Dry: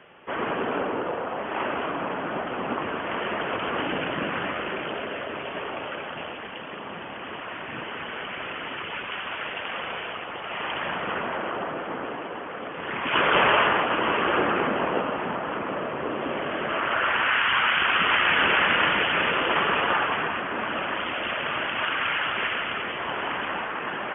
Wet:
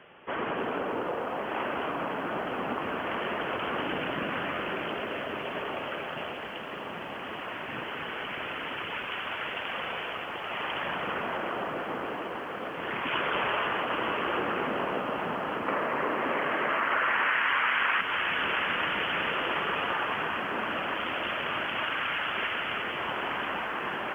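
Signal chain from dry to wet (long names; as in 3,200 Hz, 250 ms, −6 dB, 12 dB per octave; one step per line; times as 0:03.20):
0:15.68–0:18.01: graphic EQ with 10 bands 250 Hz +4 dB, 500 Hz +4 dB, 1,000 Hz +8 dB, 2,000 Hz +11 dB
downward compressor 3 to 1, threshold −26 dBFS, peak gain reduction 13 dB
feedback echo at a low word length 298 ms, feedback 80%, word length 9 bits, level −13 dB
level −2 dB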